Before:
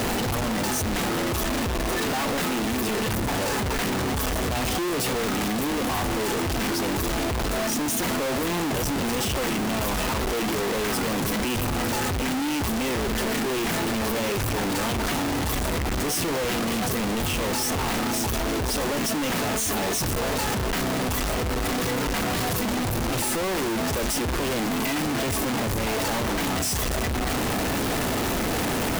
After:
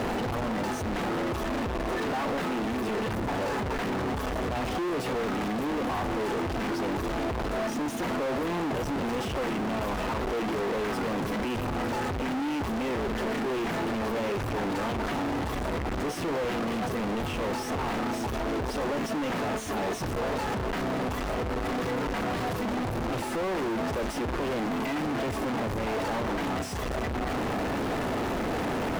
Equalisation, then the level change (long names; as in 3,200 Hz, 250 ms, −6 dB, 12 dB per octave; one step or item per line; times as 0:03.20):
low-pass filter 1,200 Hz 6 dB per octave
low-shelf EQ 260 Hz −6.5 dB
0.0 dB